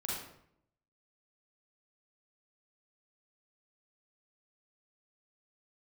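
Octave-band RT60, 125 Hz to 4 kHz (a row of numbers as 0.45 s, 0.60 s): 0.90 s, 0.85 s, 0.75 s, 0.65 s, 0.60 s, 0.50 s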